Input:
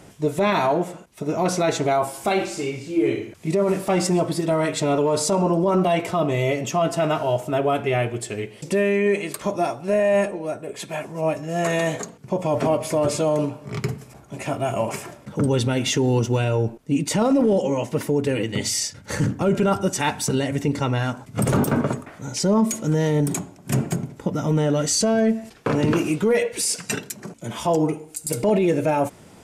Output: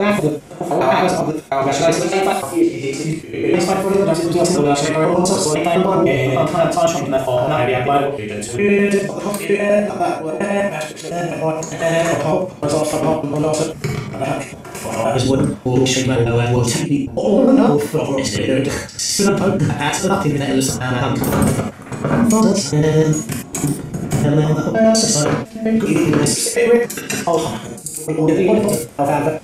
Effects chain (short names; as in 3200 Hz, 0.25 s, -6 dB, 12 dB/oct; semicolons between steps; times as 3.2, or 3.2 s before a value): slices in reverse order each 0.101 s, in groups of 5; non-linear reverb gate 0.11 s flat, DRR -0.5 dB; gain +3 dB